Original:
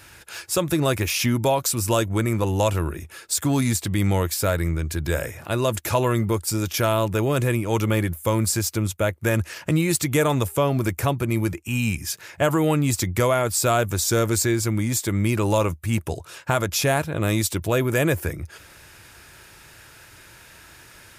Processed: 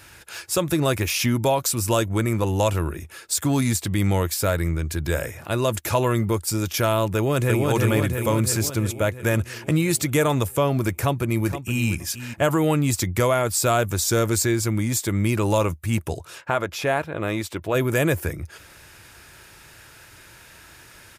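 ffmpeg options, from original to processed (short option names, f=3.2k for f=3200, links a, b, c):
-filter_complex "[0:a]asplit=2[a][b];[b]afade=t=in:st=7.15:d=0.01,afade=t=out:st=7.68:d=0.01,aecho=0:1:340|680|1020|1360|1700|2040|2380|2720|3060|3400|3740:0.794328|0.516313|0.335604|0.218142|0.141793|0.0921652|0.0599074|0.0389398|0.0253109|0.0164521|0.0106938[c];[a][c]amix=inputs=2:normalize=0,asplit=2[d][e];[e]afade=t=in:st=10.92:d=0.01,afade=t=out:st=11.86:d=0.01,aecho=0:1:470|940:0.281838|0.0281838[f];[d][f]amix=inputs=2:normalize=0,asplit=3[g][h][i];[g]afade=t=out:st=16.4:d=0.02[j];[h]bass=f=250:g=-8,treble=f=4k:g=-13,afade=t=in:st=16.4:d=0.02,afade=t=out:st=17.74:d=0.02[k];[i]afade=t=in:st=17.74:d=0.02[l];[j][k][l]amix=inputs=3:normalize=0"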